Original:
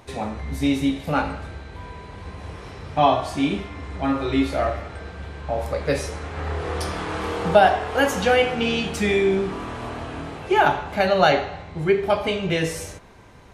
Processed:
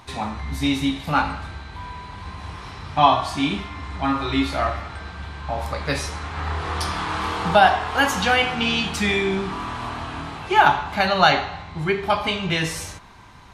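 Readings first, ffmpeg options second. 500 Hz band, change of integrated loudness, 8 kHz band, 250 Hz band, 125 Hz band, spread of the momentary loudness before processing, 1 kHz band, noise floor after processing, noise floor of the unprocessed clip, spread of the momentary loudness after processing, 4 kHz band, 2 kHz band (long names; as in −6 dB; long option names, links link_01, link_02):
−4.5 dB, +0.5 dB, +2.5 dB, −1.0 dB, +0.5 dB, 18 LU, +3.0 dB, −39 dBFS, −41 dBFS, 18 LU, +5.0 dB, +3.5 dB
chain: -af "equalizer=frequency=500:width_type=o:width=1:gain=-10,equalizer=frequency=1000:width_type=o:width=1:gain=7,equalizer=frequency=4000:width_type=o:width=1:gain=5,volume=1dB"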